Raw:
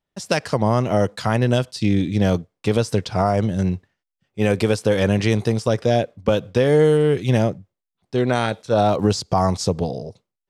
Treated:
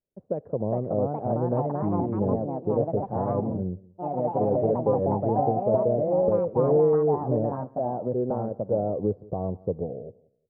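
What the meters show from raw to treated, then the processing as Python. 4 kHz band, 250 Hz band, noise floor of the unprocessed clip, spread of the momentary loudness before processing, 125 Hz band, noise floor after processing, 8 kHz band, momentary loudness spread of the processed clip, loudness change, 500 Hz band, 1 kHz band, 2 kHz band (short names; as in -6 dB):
under -40 dB, -7.0 dB, -84 dBFS, 7 LU, -8.5 dB, -61 dBFS, under -40 dB, 9 LU, -6.0 dB, -3.5 dB, -4.5 dB, under -25 dB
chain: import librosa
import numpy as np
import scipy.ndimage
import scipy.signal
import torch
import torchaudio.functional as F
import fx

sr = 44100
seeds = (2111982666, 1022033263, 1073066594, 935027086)

y = fx.ladder_lowpass(x, sr, hz=610.0, resonance_pct=45)
y = fx.echo_feedback(y, sr, ms=181, feedback_pct=24, wet_db=-23.0)
y = fx.echo_pitch(y, sr, ms=460, semitones=3, count=3, db_per_echo=-3.0)
y = F.gain(torch.from_numpy(y), -2.0).numpy()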